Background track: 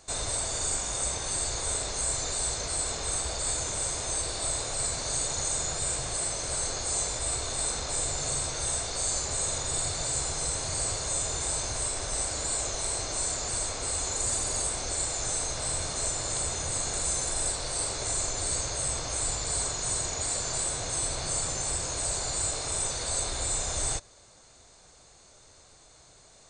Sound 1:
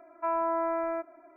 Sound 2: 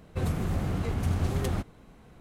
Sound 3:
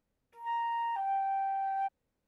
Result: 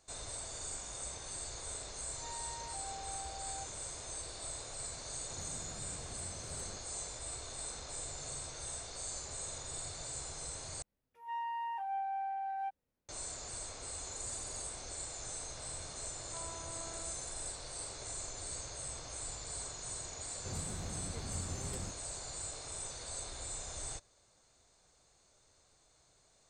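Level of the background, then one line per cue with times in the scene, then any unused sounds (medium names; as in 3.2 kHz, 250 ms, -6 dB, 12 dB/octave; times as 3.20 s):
background track -13 dB
1.77 s: add 3 -15 dB
5.15 s: add 2 -16.5 dB + compression 3:1, threshold -32 dBFS
10.82 s: replace with 3 -5.5 dB
16.11 s: add 1 -10.5 dB + compression 2.5:1, threshold -43 dBFS
20.29 s: add 2 -14.5 dB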